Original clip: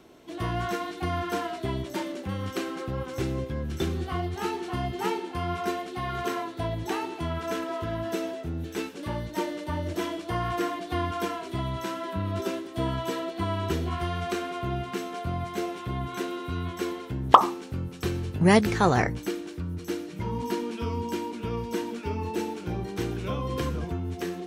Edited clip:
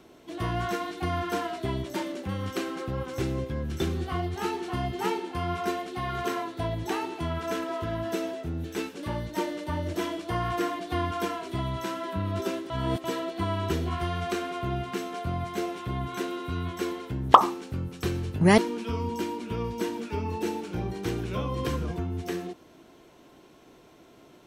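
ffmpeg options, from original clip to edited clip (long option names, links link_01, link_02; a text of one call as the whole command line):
ffmpeg -i in.wav -filter_complex "[0:a]asplit=4[link_01][link_02][link_03][link_04];[link_01]atrim=end=12.702[link_05];[link_02]atrim=start=12.698:end=13.042,asetpts=PTS-STARTPTS,areverse[link_06];[link_03]atrim=start=13.038:end=18.582[link_07];[link_04]atrim=start=20.508[link_08];[link_05][link_06]acrossfade=duration=0.004:curve1=hsin:curve2=hsin[link_09];[link_09][link_07]acrossfade=duration=0.004:curve1=hsin:curve2=hsin[link_10];[link_10][link_08]acrossfade=duration=0.004:curve1=hsin:curve2=hsin" out.wav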